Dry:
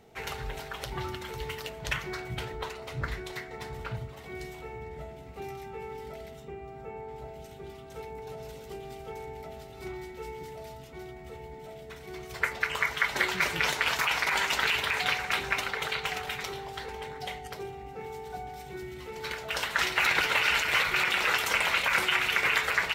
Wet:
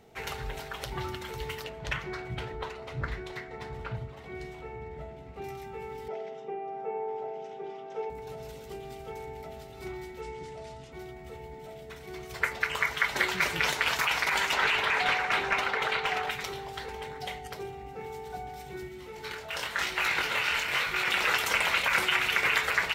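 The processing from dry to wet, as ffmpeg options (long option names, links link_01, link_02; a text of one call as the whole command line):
ffmpeg -i in.wav -filter_complex "[0:a]asettb=1/sr,asplit=3[link_01][link_02][link_03];[link_01]atrim=end=1.644[link_04];[link_02]atrim=start=1.64:end=5.44,asetpts=PTS-STARTPTS,afade=type=in:duration=0.004:curve=qsin,afade=type=out:start_time=3.796:duration=0.004:curve=qsin,aemphasis=mode=reproduction:type=50kf[link_05];[link_03]atrim=start=5.436[link_06];[link_04][link_05]acrossfade=duration=0.004:curve1=hsin:curve2=qsin[link_07];[link_07][link_06]acrossfade=duration=0.004:curve1=qsin:curve2=hsin,asettb=1/sr,asplit=3[link_08][link_09][link_10];[link_08]atrim=end=6.084[link_11];[link_09]atrim=start=6.08:end=8.1,asetpts=PTS-STARTPTS,afade=type=in:duration=0.004:curve=qsin,afade=type=out:start_time=2.016:duration=0.004:curve=qsin,highpass=frequency=190:width=0.5412,highpass=frequency=190:width=1.3066,equalizer=frequency=250:width_type=q:width=4:gain=-5,equalizer=frequency=440:width_type=q:width=4:gain=8,equalizer=frequency=790:width_type=q:width=4:gain=10,equalizer=frequency=4200:width_type=q:width=4:gain=-9,lowpass=frequency=5500:width=0.5412,lowpass=frequency=5500:width=1.3066[link_12];[link_10]atrim=start=8.096[link_13];[link_11][link_12]acrossfade=duration=0.004:curve1=hsin:curve2=qsin[link_14];[link_14][link_13]acrossfade=duration=0.004:curve1=qsin:curve2=hsin,asettb=1/sr,asplit=3[link_15][link_16][link_17];[link_15]atrim=end=10.214[link_18];[link_16]atrim=start=10.21:end=10.92,asetpts=PTS-STARTPTS,afade=type=in:duration=0.004:curve=qsin,afade=type=out:start_time=0.706:duration=0.004:curve=qsin,lowpass=frequency=8800:width=0.5412,lowpass=frequency=8800:width=1.3066[link_19];[link_17]atrim=start=10.916[link_20];[link_18][link_19]acrossfade=duration=0.004:curve1=hsin:curve2=qsin[link_21];[link_21][link_20]acrossfade=duration=0.004:curve1=qsin:curve2=hsin,asettb=1/sr,asplit=3[link_22][link_23][link_24];[link_22]atrim=end=14.534[link_25];[link_23]atrim=start=14.53:end=16.31,asetpts=PTS-STARTPTS,afade=type=in:duration=0.004:curve=qsin,afade=type=out:start_time=1.776:duration=0.004:curve=qsin,asplit=2[link_26][link_27];[link_27]highpass=frequency=720:poles=1,volume=15dB,asoftclip=type=tanh:threshold=-11dB[link_28];[link_26][link_28]amix=inputs=2:normalize=0,lowpass=frequency=1300:poles=1,volume=-6dB[link_29];[link_24]atrim=start=16.306[link_30];[link_25][link_29]acrossfade=duration=0.004:curve1=hsin:curve2=qsin[link_31];[link_31][link_30]acrossfade=duration=0.004:curve1=qsin:curve2=hsin,asplit=3[link_32][link_33][link_34];[link_32]afade=type=out:start_time=18.87:duration=0.02[link_35];[link_33]flanger=delay=19:depth=7:speed=1,afade=type=in:start_time=18.87:duration=0.02,afade=type=out:start_time=21.04:duration=0.02[link_36];[link_34]afade=type=in:start_time=21.04:duration=0.02[link_37];[link_35][link_36][link_37]amix=inputs=3:normalize=0" out.wav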